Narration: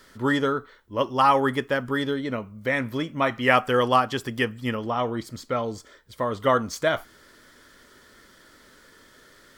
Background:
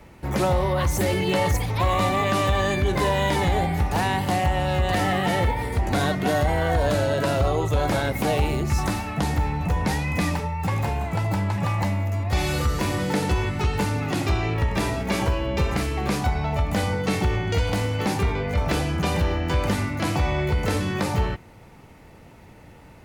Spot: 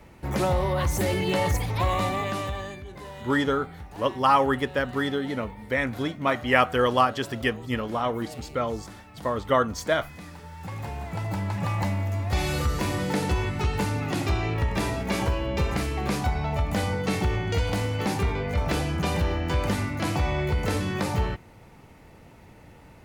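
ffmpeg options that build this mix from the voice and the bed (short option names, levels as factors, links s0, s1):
-filter_complex "[0:a]adelay=3050,volume=0.891[s0];[1:a]volume=5.01,afade=t=out:st=1.83:d=1:silence=0.149624,afade=t=in:st=10.33:d=1.49:silence=0.149624[s1];[s0][s1]amix=inputs=2:normalize=0"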